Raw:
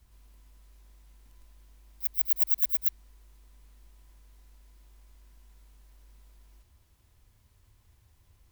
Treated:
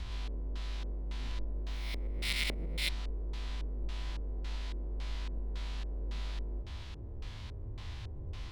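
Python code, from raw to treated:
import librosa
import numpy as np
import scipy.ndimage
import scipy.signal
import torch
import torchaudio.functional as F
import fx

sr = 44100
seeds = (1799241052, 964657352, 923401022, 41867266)

y = fx.spec_swells(x, sr, rise_s=0.8)
y = fx.filter_lfo_lowpass(y, sr, shape='square', hz=1.8, low_hz=450.0, high_hz=3800.0, q=1.8)
y = F.gain(torch.from_numpy(y), 18.0).numpy()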